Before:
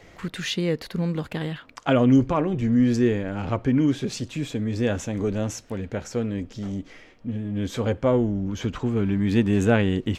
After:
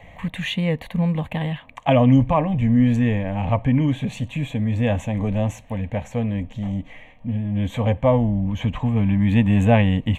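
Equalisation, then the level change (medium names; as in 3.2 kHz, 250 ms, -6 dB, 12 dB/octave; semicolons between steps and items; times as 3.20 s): treble shelf 3.7 kHz -9.5 dB; static phaser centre 1.4 kHz, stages 6; +8.0 dB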